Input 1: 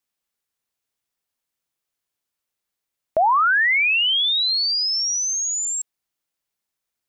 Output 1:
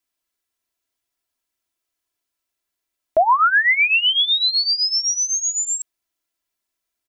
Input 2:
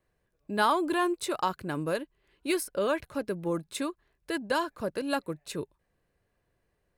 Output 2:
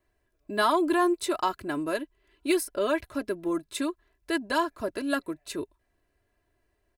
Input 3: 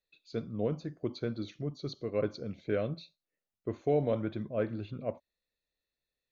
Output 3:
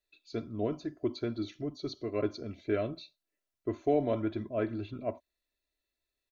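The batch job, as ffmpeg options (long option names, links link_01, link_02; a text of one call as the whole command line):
ffmpeg -i in.wav -af "aecho=1:1:3:0.69" out.wav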